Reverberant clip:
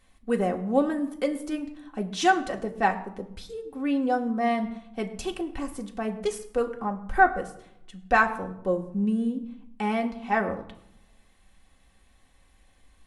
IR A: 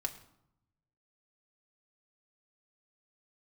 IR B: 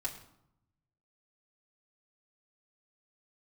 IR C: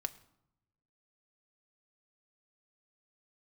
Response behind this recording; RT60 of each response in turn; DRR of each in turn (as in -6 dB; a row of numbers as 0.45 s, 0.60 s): A; 0.80 s, 0.80 s, 0.80 s; 2.0 dB, -5.0 dB, 7.5 dB